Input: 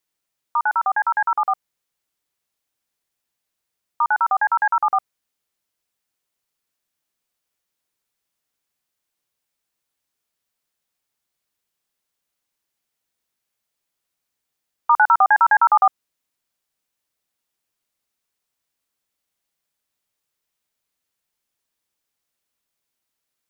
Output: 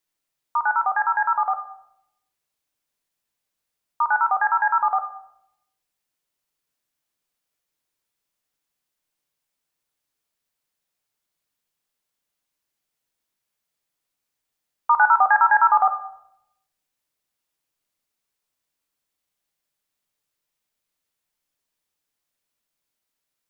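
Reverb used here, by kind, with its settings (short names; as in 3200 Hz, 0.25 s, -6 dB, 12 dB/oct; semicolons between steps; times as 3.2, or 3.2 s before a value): shoebox room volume 220 m³, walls mixed, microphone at 0.44 m; gain -2 dB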